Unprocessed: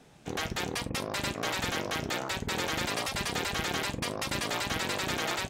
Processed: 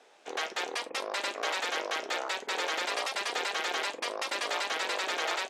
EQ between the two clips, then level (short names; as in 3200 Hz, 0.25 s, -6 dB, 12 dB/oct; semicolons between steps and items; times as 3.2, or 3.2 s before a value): HPF 420 Hz 24 dB/oct; air absorption 52 m; +1.5 dB